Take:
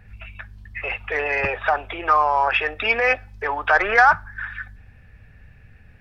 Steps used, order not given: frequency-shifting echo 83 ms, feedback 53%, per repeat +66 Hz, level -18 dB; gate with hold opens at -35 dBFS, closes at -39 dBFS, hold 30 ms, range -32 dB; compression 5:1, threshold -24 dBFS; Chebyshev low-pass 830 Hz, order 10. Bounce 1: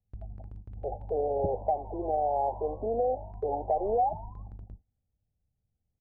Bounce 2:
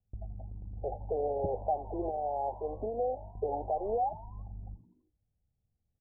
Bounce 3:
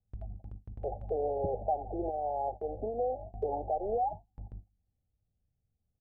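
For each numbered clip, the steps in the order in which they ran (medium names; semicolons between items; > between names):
Chebyshev low-pass > compression > frequency-shifting echo > gate with hold; gate with hold > compression > Chebyshev low-pass > frequency-shifting echo; frequency-shifting echo > compression > Chebyshev low-pass > gate with hold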